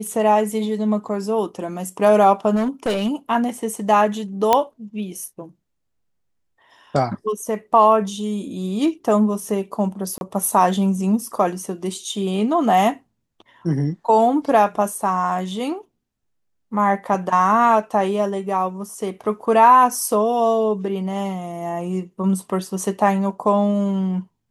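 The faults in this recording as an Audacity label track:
2.550000	3.080000	clipped -17 dBFS
4.530000	4.530000	pop -2 dBFS
10.180000	10.210000	dropout 31 ms

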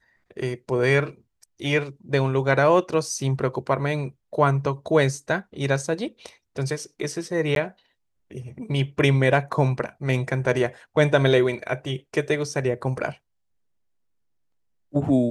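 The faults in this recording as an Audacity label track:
7.550000	7.560000	dropout 12 ms

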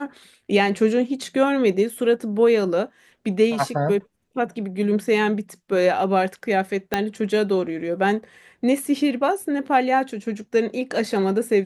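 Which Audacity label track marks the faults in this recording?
6.940000	6.940000	pop -6 dBFS

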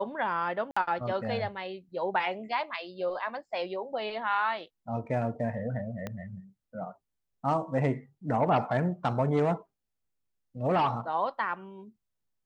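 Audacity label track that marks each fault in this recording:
0.710000	0.770000	dropout 55 ms
6.070000	6.070000	pop -21 dBFS

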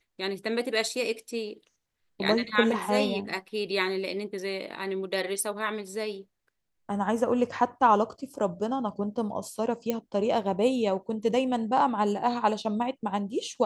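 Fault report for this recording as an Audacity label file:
9.900000	9.900000	pop -14 dBFS

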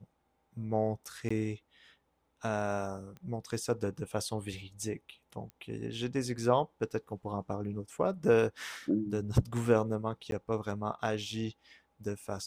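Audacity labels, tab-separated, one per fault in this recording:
1.290000	1.300000	dropout 15 ms
3.170000	3.170000	pop -35 dBFS
5.500000	5.500000	pop -33 dBFS
10.310000	10.320000	dropout 12 ms

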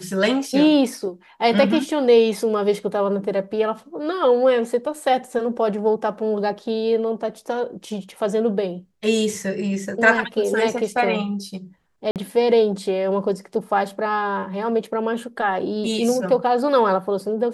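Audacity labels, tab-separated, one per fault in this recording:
12.110000	12.160000	dropout 48 ms

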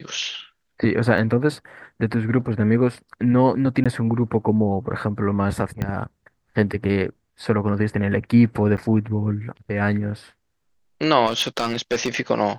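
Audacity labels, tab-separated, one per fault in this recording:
1.180000	1.180000	dropout 2.1 ms
3.840000	3.860000	dropout 16 ms
5.820000	5.820000	pop -13 dBFS
8.770000	8.780000	dropout 8.7 ms
11.260000	12.170000	clipped -16 dBFS

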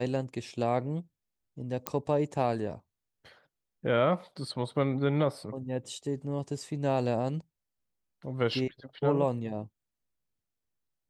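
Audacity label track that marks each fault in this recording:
1.870000	1.870000	pop -11 dBFS

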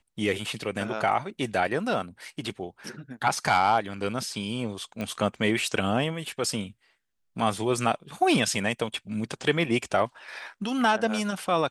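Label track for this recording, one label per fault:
5.010000	5.010000	pop -19 dBFS

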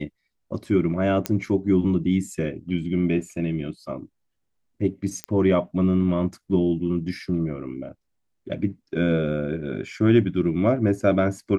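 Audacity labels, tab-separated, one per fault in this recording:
1.260000	1.260000	pop -8 dBFS
5.240000	5.240000	pop -13 dBFS

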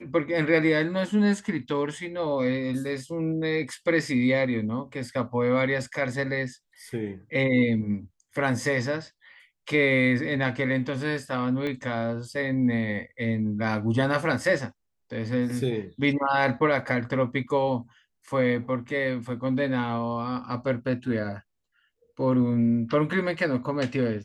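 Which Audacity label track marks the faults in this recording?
11.670000	11.670000	pop -20 dBFS

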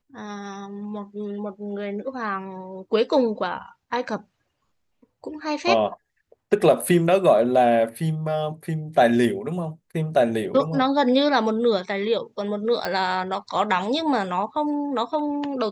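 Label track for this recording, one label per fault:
12.850000	12.850000	pop -11 dBFS

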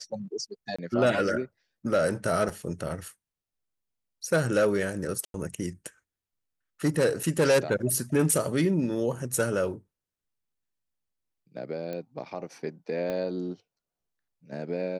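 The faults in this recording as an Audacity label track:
0.760000	0.790000	dropout 25 ms
2.490000	2.490000	dropout 3.8 ms
5.250000	5.340000	dropout 92 ms
7.230000	7.230000	dropout 4.1 ms
11.930000	11.930000	pop -23 dBFS
13.100000	13.100000	pop -20 dBFS

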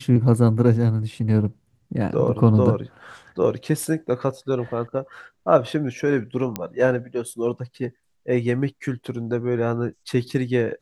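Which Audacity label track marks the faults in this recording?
6.560000	6.560000	pop -10 dBFS

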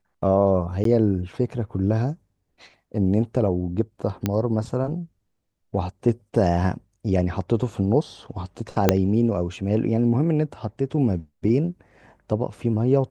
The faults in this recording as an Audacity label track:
0.840000	0.850000	dropout 13 ms
4.260000	4.260000	pop -9 dBFS
8.890000	8.890000	pop -1 dBFS

